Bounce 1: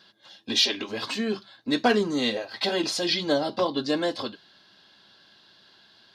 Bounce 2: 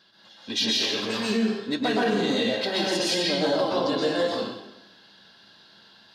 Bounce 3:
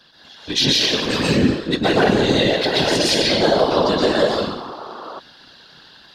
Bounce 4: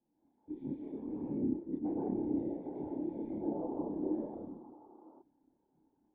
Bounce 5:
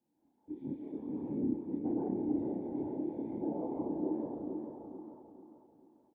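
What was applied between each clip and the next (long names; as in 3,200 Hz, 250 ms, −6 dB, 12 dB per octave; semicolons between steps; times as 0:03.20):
dense smooth reverb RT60 0.93 s, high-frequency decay 0.85×, pre-delay 110 ms, DRR −6 dB; brickwall limiter −11.5 dBFS, peak gain reduction 8.5 dB; level −3.5 dB
sound drawn into the spectrogram noise, 0:03.63–0:05.20, 320–1,400 Hz −41 dBFS; random phases in short frames; level +7.5 dB
formant resonators in series u; multi-voice chorus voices 4, 1 Hz, delay 29 ms, depth 3 ms; level −8 dB
high-pass filter 60 Hz; on a send: repeating echo 440 ms, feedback 38%, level −6 dB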